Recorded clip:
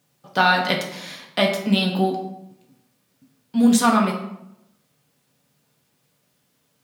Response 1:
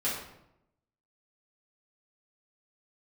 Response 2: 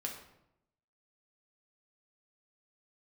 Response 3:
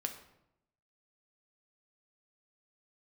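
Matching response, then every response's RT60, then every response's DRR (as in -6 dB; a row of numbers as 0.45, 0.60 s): 2; 0.80, 0.80, 0.80 s; -10.0, -0.5, 4.5 dB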